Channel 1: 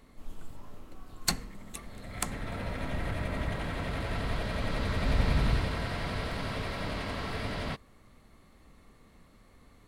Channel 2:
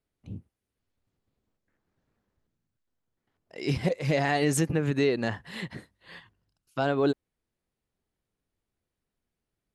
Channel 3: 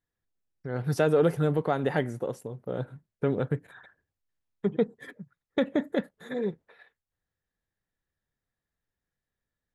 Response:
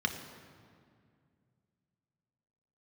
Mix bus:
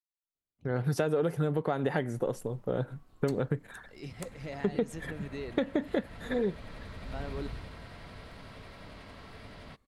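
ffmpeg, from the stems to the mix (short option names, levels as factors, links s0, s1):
-filter_complex "[0:a]adelay=2000,volume=0.211[s0];[1:a]adelay=350,volume=0.168[s1];[2:a]agate=range=0.0224:threshold=0.00398:ratio=3:detection=peak,volume=1.41[s2];[s0][s1][s2]amix=inputs=3:normalize=0,acompressor=threshold=0.0562:ratio=6"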